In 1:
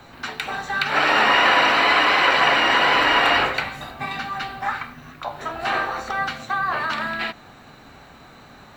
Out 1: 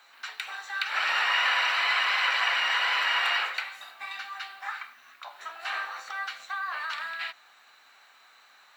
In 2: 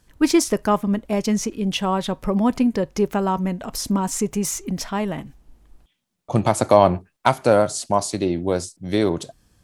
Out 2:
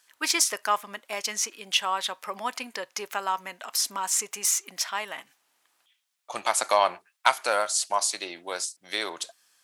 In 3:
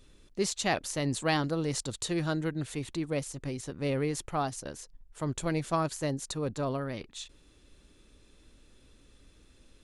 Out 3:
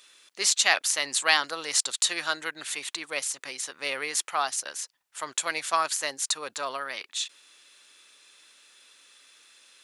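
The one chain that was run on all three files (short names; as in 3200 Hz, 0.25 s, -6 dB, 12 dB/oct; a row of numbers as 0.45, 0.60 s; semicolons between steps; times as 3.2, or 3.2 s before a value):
HPF 1300 Hz 12 dB/oct; match loudness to -27 LUFS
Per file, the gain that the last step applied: -6.0, +3.0, +11.5 dB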